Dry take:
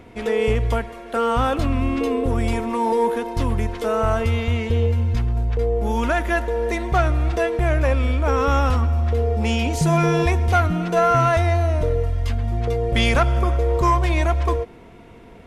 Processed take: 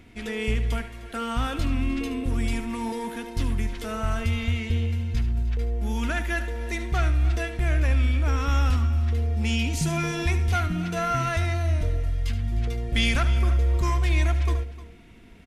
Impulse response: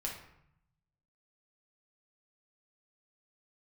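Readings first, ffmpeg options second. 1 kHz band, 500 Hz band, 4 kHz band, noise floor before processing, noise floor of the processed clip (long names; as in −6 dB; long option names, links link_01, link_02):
−10.5 dB, −13.5 dB, −2.0 dB, −44 dBFS, −43 dBFS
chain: -af "equalizer=frequency=125:width_type=o:width=1:gain=-5,equalizer=frequency=500:width_type=o:width=1:gain=-12,equalizer=frequency=1000:width_type=o:width=1:gain=-9,aecho=1:1:74|305:0.251|0.15,volume=-1.5dB"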